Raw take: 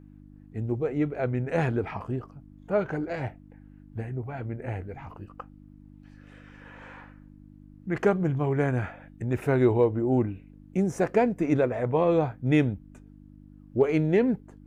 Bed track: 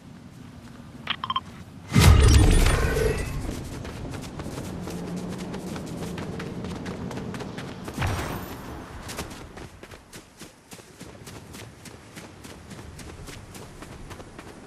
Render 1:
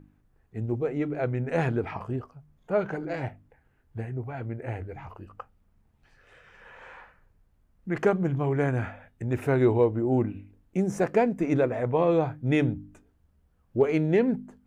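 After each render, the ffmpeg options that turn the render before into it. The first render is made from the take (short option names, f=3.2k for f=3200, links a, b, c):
-af "bandreject=f=50:t=h:w=4,bandreject=f=100:t=h:w=4,bandreject=f=150:t=h:w=4,bandreject=f=200:t=h:w=4,bandreject=f=250:t=h:w=4,bandreject=f=300:t=h:w=4"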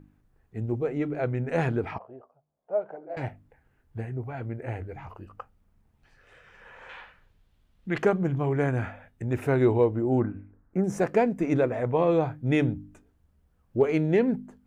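-filter_complex "[0:a]asettb=1/sr,asplit=3[a][b][c];[a]atrim=end=1.984[d];[b]atrim=start=1.98:end=3.17,asetpts=PTS-STARTPTS,afade=t=in:d=0.004:c=qsin,afade=t=out:st=1.186:d=0.004:c=qsin,bandpass=f=640:t=q:w=3.2[e];[c]atrim=start=3.166[f];[d][e]acrossfade=d=0.004:c1=hsin:c2=qsin[g];[g][f]acrossfade=d=0.004:c1=qsin:c2=hsin,asettb=1/sr,asplit=3[h][i][j];[h]atrim=end=6.894[k];[i]atrim=start=6.89:end=8.03,asetpts=PTS-STARTPTS,afade=t=in:d=0.004:c=qsin,afade=t=out:st=1.136:d=0.004:c=qsin,equalizer=f=3.4k:w=1.2:g=13[l];[j]atrim=start=8.026[m];[k][l]acrossfade=d=0.004:c1=hsin:c2=qsin[n];[n][m]acrossfade=d=0.004:c1=qsin:c2=hsin,asettb=1/sr,asplit=3[o][p][q];[o]atrim=end=10.204[r];[p]atrim=start=10.2:end=10.84,asetpts=PTS-STARTPTS,afade=t=in:d=0.004:c=qsin,afade=t=out:st=0.636:d=0.004:c=qsin,highshelf=f=2.2k:t=q:w=3:g=-14[s];[q]atrim=start=10.836[t];[r][s]acrossfade=d=0.004:c1=hsin:c2=qsin[u];[u][t]acrossfade=d=0.004:c1=qsin:c2=hsin"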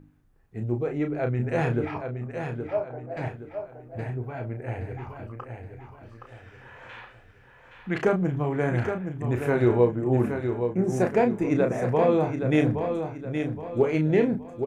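-filter_complex "[0:a]asplit=2[a][b];[b]adelay=33,volume=-6.5dB[c];[a][c]amix=inputs=2:normalize=0,aecho=1:1:820|1640|2460|3280|4100:0.447|0.174|0.0679|0.0265|0.0103"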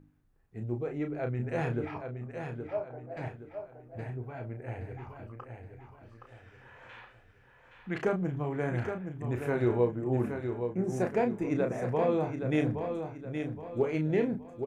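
-af "volume=-6.5dB"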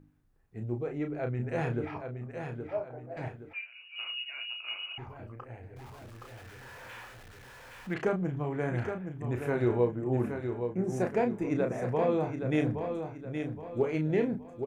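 -filter_complex "[0:a]asettb=1/sr,asplit=3[a][b][c];[a]atrim=end=3.534[d];[b]atrim=start=3.53:end=4.98,asetpts=PTS-STARTPTS,afade=t=in:d=0.004:c=qsin,afade=t=out:st=1.446:d=0.004:c=qsin,lowpass=f=2.6k:t=q:w=0.5098,lowpass=f=2.6k:t=q:w=0.6013,lowpass=f=2.6k:t=q:w=0.9,lowpass=f=2.6k:t=q:w=2.563,afreqshift=-3000[e];[c]atrim=start=4.976[f];[d][e]acrossfade=d=0.004:c1=hsin:c2=qsin[g];[g][f]acrossfade=d=0.004:c1=qsin:c2=hsin,asettb=1/sr,asplit=3[h][i][j];[h]atrim=end=5.764[k];[i]atrim=start=5.76:end=7.94,asetpts=PTS-STARTPTS,afade=t=in:d=0.004:c=qsin,afade=t=out:st=2.176:d=0.004:c=qsin,aeval=exprs='val(0)+0.5*0.00422*sgn(val(0))':c=same[l];[j]atrim=start=7.936[m];[k][l]acrossfade=d=0.004:c1=hsin:c2=qsin[n];[n][m]acrossfade=d=0.004:c1=qsin:c2=hsin"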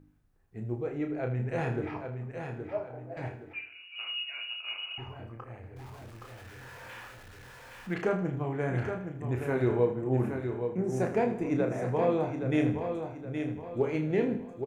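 -filter_complex "[0:a]asplit=2[a][b];[b]adelay=23,volume=-12dB[c];[a][c]amix=inputs=2:normalize=0,asplit=2[d][e];[e]aecho=0:1:79|158|237|316|395:0.251|0.116|0.0532|0.0244|0.0112[f];[d][f]amix=inputs=2:normalize=0"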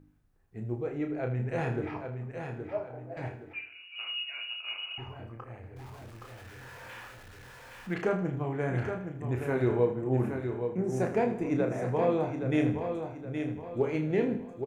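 -af anull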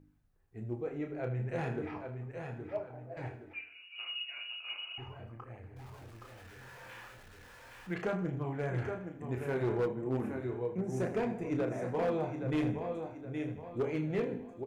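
-af "flanger=delay=0.3:depth=5.9:regen=-60:speed=0.36:shape=triangular,volume=26.5dB,asoftclip=hard,volume=-26.5dB"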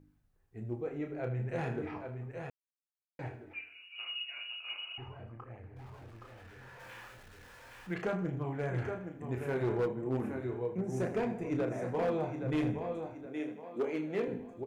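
-filter_complex "[0:a]asettb=1/sr,asplit=3[a][b][c];[a]atrim=end=4.974[d];[b]atrim=start=4.97:end=6.8,asetpts=PTS-STARTPTS,afade=t=in:d=0.004:c=qsin,afade=t=out:st=1.826:d=0.004:c=qsin,highshelf=f=4.5k:g=-9.5[e];[c]atrim=start=6.796[f];[d][e]acrossfade=d=0.004:c1=hsin:c2=qsin[g];[g][f]acrossfade=d=0.004:c1=qsin:c2=hsin,asettb=1/sr,asplit=3[h][i][j];[h]atrim=end=13.264[k];[i]atrim=start=13.26:end=14.28,asetpts=PTS-STARTPTS,afade=t=in:d=0.004:c=qsin,afade=t=out:st=1.016:d=0.004:c=qsin,highpass=f=210:w=0.5412,highpass=f=210:w=1.3066[l];[j]atrim=start=14.276[m];[k][l]acrossfade=d=0.004:c1=hsin:c2=qsin[n];[n][m]acrossfade=d=0.004:c1=qsin:c2=hsin,asplit=3[o][p][q];[o]atrim=end=2.5,asetpts=PTS-STARTPTS,afade=t=out:st=2.496:d=0.004:c=hsin[r];[p]atrim=start=2.5:end=3.19,asetpts=PTS-STARTPTS,volume=0[s];[q]atrim=start=3.19,asetpts=PTS-STARTPTS,afade=t=in:d=0.004:c=hsin[t];[r][s][t]concat=n=3:v=0:a=1"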